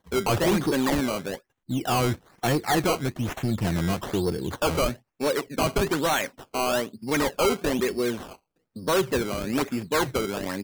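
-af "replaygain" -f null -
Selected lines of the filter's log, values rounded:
track_gain = +6.6 dB
track_peak = 0.093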